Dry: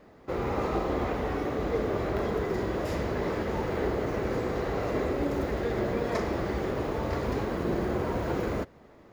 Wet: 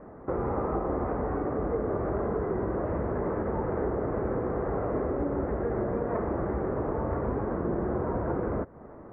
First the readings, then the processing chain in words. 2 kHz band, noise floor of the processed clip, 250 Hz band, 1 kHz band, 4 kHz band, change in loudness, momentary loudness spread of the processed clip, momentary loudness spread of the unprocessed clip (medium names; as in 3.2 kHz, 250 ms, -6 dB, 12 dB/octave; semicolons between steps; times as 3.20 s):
-6.5 dB, -46 dBFS, 0.0 dB, 0.0 dB, under -30 dB, 0.0 dB, 1 LU, 2 LU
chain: inverse Chebyshev low-pass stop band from 4.8 kHz, stop band 60 dB; compression 2.5:1, threshold -38 dBFS, peak gain reduction 10 dB; trim +8 dB